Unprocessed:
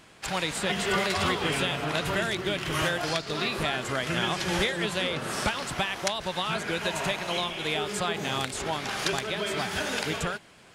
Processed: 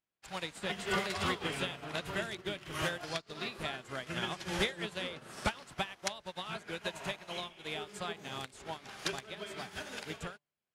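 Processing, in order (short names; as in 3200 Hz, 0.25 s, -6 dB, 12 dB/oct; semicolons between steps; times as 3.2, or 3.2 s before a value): de-hum 146.5 Hz, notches 8; upward expander 2.5:1, over -48 dBFS; gain -3 dB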